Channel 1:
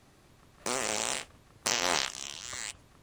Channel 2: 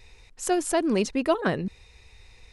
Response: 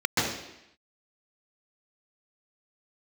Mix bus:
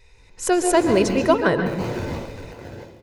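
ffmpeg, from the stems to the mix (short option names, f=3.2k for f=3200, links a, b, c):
-filter_complex "[0:a]acrusher=samples=34:mix=1:aa=0.000001:lfo=1:lforange=20.4:lforate=2.8,volume=-18dB,asplit=3[a][b][c];[b]volume=-6dB[d];[c]volume=-7dB[e];[1:a]volume=-3dB,asplit=2[f][g];[g]volume=-21.5dB[h];[2:a]atrim=start_sample=2205[i];[d][h]amix=inputs=2:normalize=0[j];[j][i]afir=irnorm=-1:irlink=0[k];[e]aecho=0:1:147|294|441|588|735|882|1029|1176|1323:1|0.59|0.348|0.205|0.121|0.0715|0.0422|0.0249|0.0147[l];[a][f][k][l]amix=inputs=4:normalize=0,aecho=1:1:2:0.31,dynaudnorm=f=230:g=3:m=9dB"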